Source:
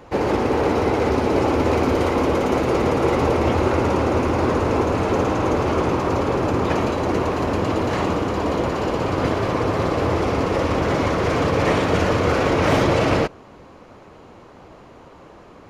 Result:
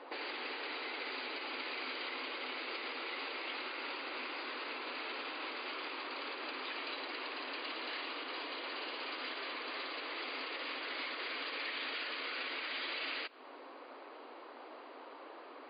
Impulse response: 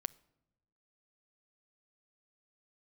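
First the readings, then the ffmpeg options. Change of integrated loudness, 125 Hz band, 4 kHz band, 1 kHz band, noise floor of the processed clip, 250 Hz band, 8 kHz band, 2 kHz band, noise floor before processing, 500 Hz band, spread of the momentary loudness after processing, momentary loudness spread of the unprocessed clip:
−19.5 dB, below −40 dB, −7.0 dB, −21.0 dB, −52 dBFS, −30.0 dB, below −40 dB, −11.0 dB, −45 dBFS, −27.5 dB, 13 LU, 3 LU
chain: -filter_complex "[0:a]acrossover=split=1400[link_01][link_02];[link_01]acompressor=threshold=-29dB:ratio=20[link_03];[link_03][link_02]amix=inputs=2:normalize=0,lowshelf=frequency=410:gain=-10.5,afftfilt=real='re*between(b*sr/4096,240,4900)':imag='im*between(b*sr/4096,240,4900)':win_size=4096:overlap=0.75,alimiter=level_in=1dB:limit=-24dB:level=0:latency=1:release=107,volume=-1dB,acrossover=split=350|2200[link_04][link_05][link_06];[link_04]acompressor=threshold=-51dB:ratio=4[link_07];[link_05]acompressor=threshold=-43dB:ratio=4[link_08];[link_07][link_08][link_06]amix=inputs=3:normalize=0,volume=-2.5dB"

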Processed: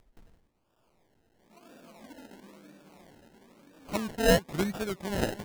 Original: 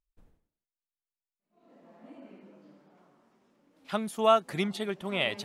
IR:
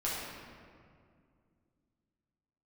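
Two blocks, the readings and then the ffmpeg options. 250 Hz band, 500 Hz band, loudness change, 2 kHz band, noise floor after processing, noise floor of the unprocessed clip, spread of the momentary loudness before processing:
+3.0 dB, −0.5 dB, −0.5 dB, +1.0 dB, −73 dBFS, below −85 dBFS, 10 LU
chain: -af "acrusher=samples=30:mix=1:aa=0.000001:lfo=1:lforange=18:lforate=1,acompressor=mode=upward:threshold=-46dB:ratio=2.5"

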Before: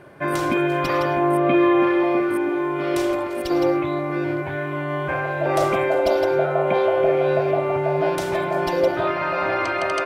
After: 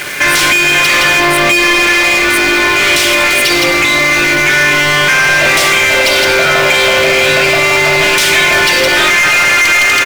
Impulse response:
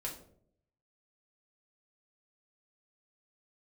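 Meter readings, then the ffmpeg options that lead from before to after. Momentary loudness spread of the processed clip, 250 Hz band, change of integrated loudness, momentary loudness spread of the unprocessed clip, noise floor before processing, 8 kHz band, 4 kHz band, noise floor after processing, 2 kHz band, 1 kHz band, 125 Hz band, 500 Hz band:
2 LU, +3.0 dB, +13.5 dB, 7 LU, −27 dBFS, +28.0 dB, +26.5 dB, −10 dBFS, +22.0 dB, +8.5 dB, +5.5 dB, +4.5 dB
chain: -filter_complex "[0:a]firequalizer=gain_entry='entry(230,0);entry(750,-8);entry(2100,15)':delay=0.05:min_phase=1,acompressor=threshold=-20dB:ratio=6,asplit=2[link_01][link_02];[link_02]highpass=frequency=720:poles=1,volume=34dB,asoftclip=type=tanh:threshold=0dB[link_03];[link_01][link_03]amix=inputs=2:normalize=0,lowpass=frequency=7200:poles=1,volume=-6dB,aeval=exprs='val(0)*gte(abs(val(0)),0.133)':channel_layout=same,asplit=2[link_04][link_05];[1:a]atrim=start_sample=2205,adelay=7[link_06];[link_05][link_06]afir=irnorm=-1:irlink=0,volume=-9.5dB[link_07];[link_04][link_07]amix=inputs=2:normalize=0,volume=-2dB"

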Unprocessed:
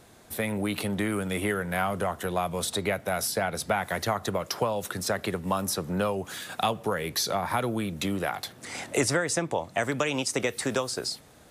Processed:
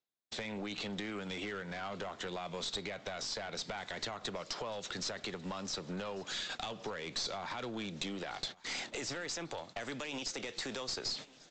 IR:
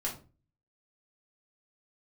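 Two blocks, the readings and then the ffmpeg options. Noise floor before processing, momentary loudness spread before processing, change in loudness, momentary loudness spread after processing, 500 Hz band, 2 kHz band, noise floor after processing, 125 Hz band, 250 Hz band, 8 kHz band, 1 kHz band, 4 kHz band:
−53 dBFS, 4 LU, −10.5 dB, 4 LU, −13.5 dB, −10.5 dB, −60 dBFS, −15.0 dB, −12.5 dB, −11.5 dB, −13.5 dB, −4.5 dB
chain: -af "highpass=170,agate=range=-52dB:threshold=-40dB:ratio=16:detection=peak,equalizer=frequency=2900:width_type=o:width=1.3:gain=7,areverse,acompressor=mode=upward:threshold=-34dB:ratio=2.5,areverse,alimiter=limit=-20dB:level=0:latency=1:release=11,acompressor=threshold=-39dB:ratio=8,aexciter=amount=1.4:drive=7.6:freq=3700,aresample=16000,aeval=exprs='clip(val(0),-1,0.0106)':channel_layout=same,aresample=44100,aecho=1:1:1145|2290|3435:0.0708|0.0361|0.0184,volume=2dB"

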